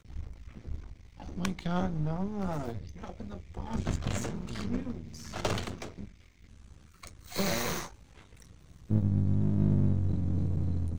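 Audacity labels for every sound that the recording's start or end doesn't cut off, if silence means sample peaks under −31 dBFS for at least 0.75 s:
7.040000	7.860000	sound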